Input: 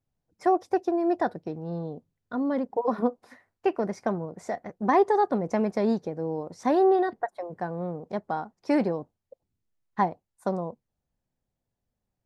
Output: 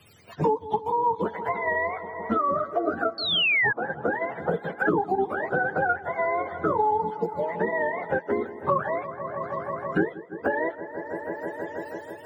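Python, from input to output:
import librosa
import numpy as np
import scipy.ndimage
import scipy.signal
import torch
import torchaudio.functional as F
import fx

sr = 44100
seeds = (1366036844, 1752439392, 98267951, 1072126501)

p1 = fx.octave_mirror(x, sr, pivot_hz=570.0)
p2 = fx.level_steps(p1, sr, step_db=12)
p3 = p1 + (p2 * 10.0 ** (-2.5 / 20.0))
p4 = fx.echo_wet_lowpass(p3, sr, ms=162, feedback_pct=71, hz=1800.0, wet_db=-18)
p5 = fx.spec_paint(p4, sr, seeds[0], shape='fall', start_s=3.18, length_s=0.55, low_hz=1600.0, high_hz=4500.0, level_db=-19.0)
y = fx.band_squash(p5, sr, depth_pct=100)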